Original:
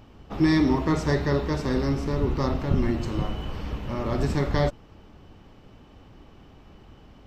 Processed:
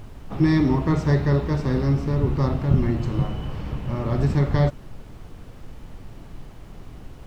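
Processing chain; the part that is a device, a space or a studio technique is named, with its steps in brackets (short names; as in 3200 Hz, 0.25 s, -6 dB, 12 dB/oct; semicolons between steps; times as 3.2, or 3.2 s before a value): car interior (bell 130 Hz +9 dB 0.73 oct; high shelf 4100 Hz -7 dB; brown noise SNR 15 dB)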